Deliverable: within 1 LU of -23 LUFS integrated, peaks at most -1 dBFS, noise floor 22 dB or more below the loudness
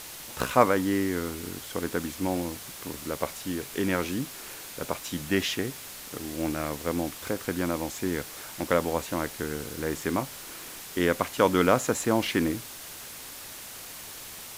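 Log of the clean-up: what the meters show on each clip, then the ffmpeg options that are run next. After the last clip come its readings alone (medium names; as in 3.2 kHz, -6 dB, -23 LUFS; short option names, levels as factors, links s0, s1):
noise floor -42 dBFS; noise floor target -52 dBFS; loudness -29.5 LUFS; peak level -3.5 dBFS; loudness target -23.0 LUFS
-> -af "afftdn=nr=10:nf=-42"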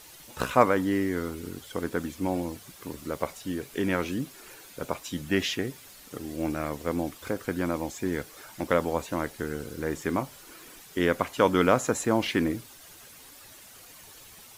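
noise floor -50 dBFS; noise floor target -51 dBFS
-> -af "afftdn=nr=6:nf=-50"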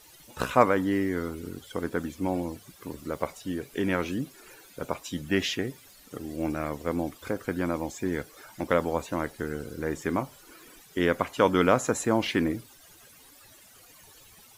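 noise floor -54 dBFS; loudness -29.0 LUFS; peak level -3.5 dBFS; loudness target -23.0 LUFS
-> -af "volume=2,alimiter=limit=0.891:level=0:latency=1"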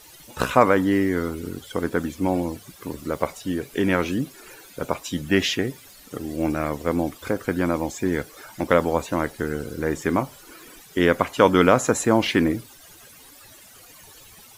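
loudness -23.5 LUFS; peak level -1.0 dBFS; noise floor -48 dBFS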